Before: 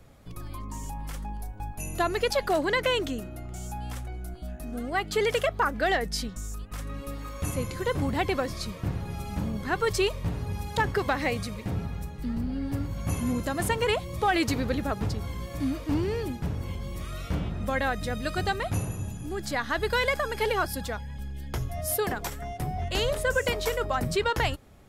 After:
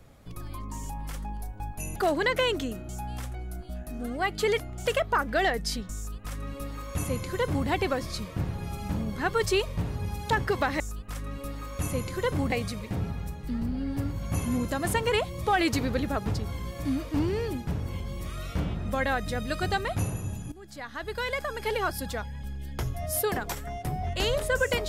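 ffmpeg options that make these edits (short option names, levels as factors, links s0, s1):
-filter_complex "[0:a]asplit=8[s0][s1][s2][s3][s4][s5][s6][s7];[s0]atrim=end=1.962[s8];[s1]atrim=start=2.428:end=3.362[s9];[s2]atrim=start=3.618:end=5.332[s10];[s3]atrim=start=3.358:end=3.622[s11];[s4]atrim=start=5.328:end=11.272[s12];[s5]atrim=start=6.428:end=8.152[s13];[s6]atrim=start=11.268:end=19.27,asetpts=PTS-STARTPTS,afade=t=out:st=7.998:d=0.004:c=hsin:silence=0.149624[s14];[s7]atrim=start=19.27,asetpts=PTS-STARTPTS,afade=t=in:d=1.68:silence=0.149624[s15];[s8][s9]acrossfade=d=0.004:c1=hsin:c2=hsin[s16];[s16][s10]acrossfade=d=0.004:c1=hsin:c2=hsin[s17];[s17][s11]acrossfade=d=0.004:c1=hsin:c2=hsin[s18];[s18][s12]acrossfade=d=0.004:c1=hsin:c2=hsin[s19];[s19][s13]acrossfade=d=0.004:c1=hsin:c2=hsin[s20];[s14][s15]concat=n=2:v=0:a=1[s21];[s20][s21]acrossfade=d=0.004:c1=hsin:c2=hsin"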